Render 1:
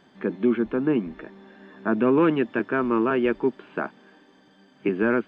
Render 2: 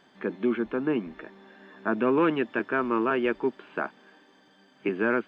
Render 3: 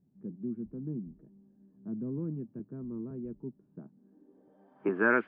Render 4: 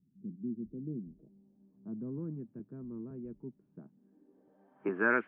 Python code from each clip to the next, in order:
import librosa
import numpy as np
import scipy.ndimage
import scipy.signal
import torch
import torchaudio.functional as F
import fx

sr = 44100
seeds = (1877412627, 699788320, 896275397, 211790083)

y1 = fx.low_shelf(x, sr, hz=350.0, db=-8.0)
y2 = fx.filter_sweep_lowpass(y1, sr, from_hz=150.0, to_hz=2100.0, start_s=3.87, end_s=5.2, q=1.8)
y2 = y2 * 10.0 ** (-2.5 / 20.0)
y3 = fx.filter_sweep_lowpass(y2, sr, from_hz=250.0, to_hz=2500.0, start_s=0.31, end_s=2.59, q=1.3)
y3 = y3 * 10.0 ** (-4.0 / 20.0)